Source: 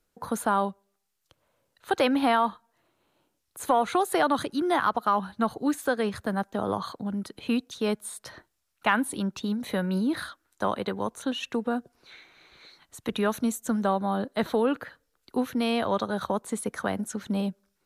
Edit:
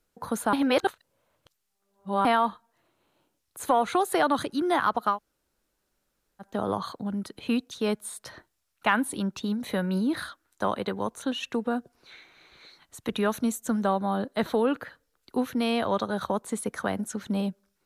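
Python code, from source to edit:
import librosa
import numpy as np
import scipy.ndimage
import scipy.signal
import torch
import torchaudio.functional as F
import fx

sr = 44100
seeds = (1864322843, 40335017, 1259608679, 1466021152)

y = fx.edit(x, sr, fx.reverse_span(start_s=0.53, length_s=1.72),
    fx.room_tone_fill(start_s=5.14, length_s=1.3, crossfade_s=0.1), tone=tone)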